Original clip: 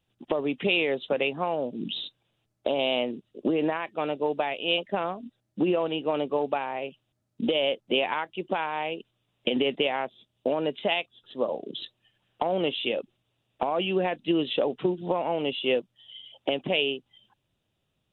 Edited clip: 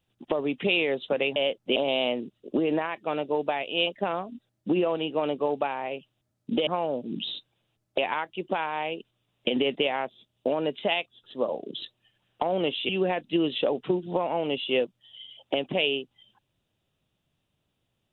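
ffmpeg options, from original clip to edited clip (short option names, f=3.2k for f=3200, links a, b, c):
-filter_complex "[0:a]asplit=6[a][b][c][d][e][f];[a]atrim=end=1.362[g];[b]atrim=start=7.578:end=7.982[h];[c]atrim=start=2.668:end=7.582[i];[d]atrim=start=1.358:end=2.672[j];[e]atrim=start=7.978:end=12.892[k];[f]atrim=start=13.838[l];[g][h]acrossfade=d=0.004:c1=hsin:c2=hsin[m];[m][i]acrossfade=d=0.004:c1=hsin:c2=hsin[n];[n][j]acrossfade=d=0.004:c1=hsin:c2=hsin[o];[o][k]acrossfade=d=0.004:c1=hsin:c2=hsin[p];[p][l]acrossfade=d=0.004:c1=hsin:c2=hsin"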